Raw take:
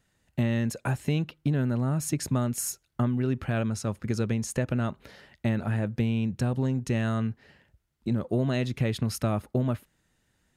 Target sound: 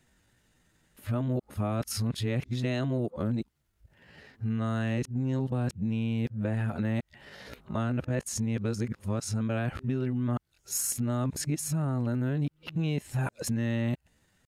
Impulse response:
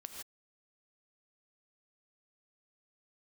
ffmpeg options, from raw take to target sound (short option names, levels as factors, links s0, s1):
-af "areverse,atempo=0.73,acompressor=threshold=0.0316:ratio=6,volume=1.5"